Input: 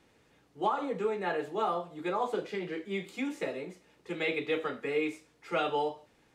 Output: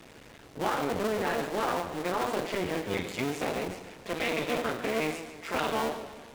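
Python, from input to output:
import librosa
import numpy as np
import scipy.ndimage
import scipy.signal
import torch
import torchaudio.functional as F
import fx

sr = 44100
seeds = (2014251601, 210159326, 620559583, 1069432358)

p1 = fx.cycle_switch(x, sr, every=2, mode='muted')
p2 = fx.over_compress(p1, sr, threshold_db=-38.0, ratio=-1.0)
p3 = p1 + F.gain(torch.from_numpy(p2), -3.0).numpy()
p4 = fx.power_curve(p3, sr, exponent=0.7)
p5 = fx.echo_warbled(p4, sr, ms=149, feedback_pct=49, rate_hz=2.8, cents=122, wet_db=-12.0)
y = F.gain(torch.from_numpy(p5), -1.5).numpy()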